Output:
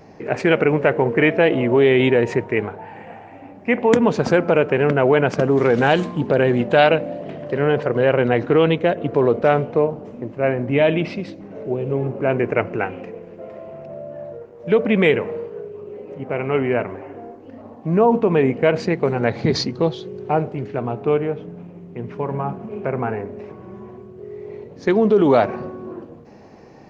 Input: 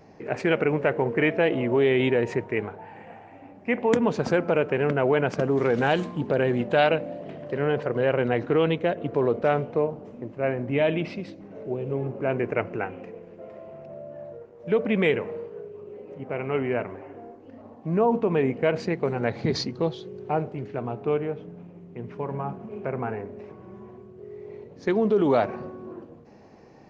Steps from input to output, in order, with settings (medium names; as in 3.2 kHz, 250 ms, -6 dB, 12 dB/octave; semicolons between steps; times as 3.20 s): 12.77–14.75 s: dynamic bell 3.8 kHz, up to +4 dB, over -50 dBFS, Q 1; trim +6.5 dB